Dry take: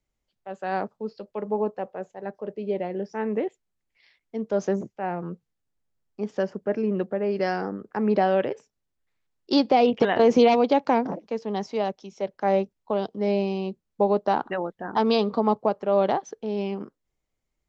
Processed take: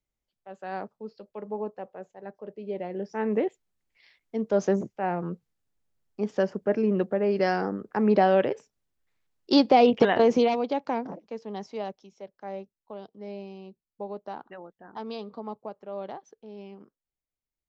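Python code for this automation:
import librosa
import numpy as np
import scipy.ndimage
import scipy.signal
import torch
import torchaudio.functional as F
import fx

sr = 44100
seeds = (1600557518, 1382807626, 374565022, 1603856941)

y = fx.gain(x, sr, db=fx.line((2.62, -7.0), (3.33, 1.0), (10.05, 1.0), (10.59, -7.5), (11.92, -7.5), (12.32, -15.0)))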